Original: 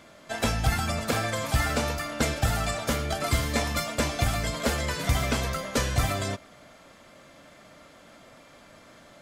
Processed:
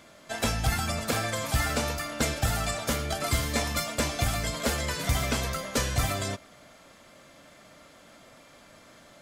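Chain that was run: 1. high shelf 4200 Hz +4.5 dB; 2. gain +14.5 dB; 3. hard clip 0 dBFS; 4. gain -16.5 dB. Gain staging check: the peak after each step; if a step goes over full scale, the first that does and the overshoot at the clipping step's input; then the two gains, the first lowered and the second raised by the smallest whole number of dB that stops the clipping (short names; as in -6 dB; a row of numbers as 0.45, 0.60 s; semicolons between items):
-10.5, +4.0, 0.0, -16.5 dBFS; step 2, 4.0 dB; step 2 +10.5 dB, step 4 -12.5 dB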